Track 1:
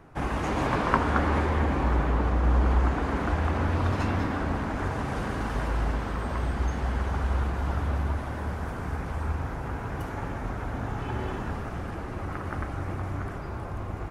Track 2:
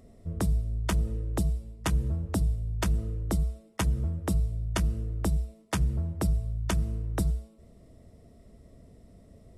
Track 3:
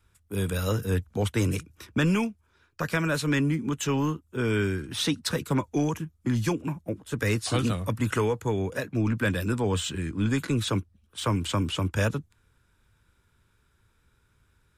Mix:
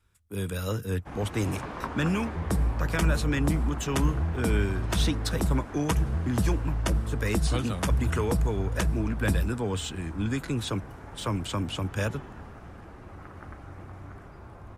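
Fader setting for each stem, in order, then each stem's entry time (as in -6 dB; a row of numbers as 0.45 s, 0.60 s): -11.0 dB, +0.5 dB, -3.5 dB; 0.90 s, 2.10 s, 0.00 s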